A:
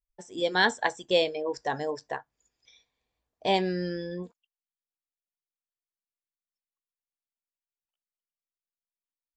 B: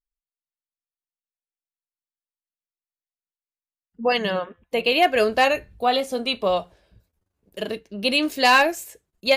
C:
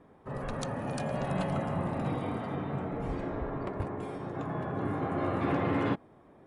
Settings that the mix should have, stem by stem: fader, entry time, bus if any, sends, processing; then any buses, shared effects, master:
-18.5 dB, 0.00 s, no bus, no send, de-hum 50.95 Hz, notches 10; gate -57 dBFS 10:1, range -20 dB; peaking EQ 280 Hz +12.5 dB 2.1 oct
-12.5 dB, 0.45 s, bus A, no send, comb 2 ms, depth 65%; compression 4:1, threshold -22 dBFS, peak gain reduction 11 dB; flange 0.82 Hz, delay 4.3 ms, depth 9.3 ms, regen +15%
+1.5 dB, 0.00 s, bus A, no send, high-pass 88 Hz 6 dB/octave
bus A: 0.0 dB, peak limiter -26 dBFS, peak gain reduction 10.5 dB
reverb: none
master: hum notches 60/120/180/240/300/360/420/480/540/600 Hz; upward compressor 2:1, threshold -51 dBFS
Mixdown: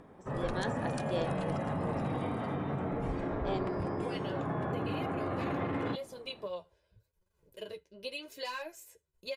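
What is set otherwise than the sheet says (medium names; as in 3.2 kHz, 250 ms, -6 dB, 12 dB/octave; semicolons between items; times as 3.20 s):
stem B: entry 0.45 s -> 0.00 s; stem C: missing high-pass 88 Hz 6 dB/octave; master: missing hum notches 60/120/180/240/300/360/420/480/540/600 Hz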